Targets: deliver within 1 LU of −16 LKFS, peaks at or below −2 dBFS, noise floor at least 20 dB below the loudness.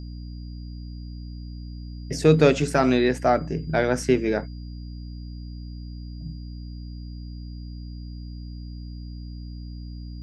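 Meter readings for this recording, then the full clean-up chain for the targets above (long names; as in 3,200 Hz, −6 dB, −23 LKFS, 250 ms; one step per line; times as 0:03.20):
mains hum 60 Hz; hum harmonics up to 300 Hz; level of the hum −33 dBFS; interfering tone 4,800 Hz; level of the tone −53 dBFS; integrated loudness −21.5 LKFS; sample peak −4.0 dBFS; target loudness −16.0 LKFS
→ hum removal 60 Hz, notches 5
notch filter 4,800 Hz, Q 30
level +5.5 dB
brickwall limiter −2 dBFS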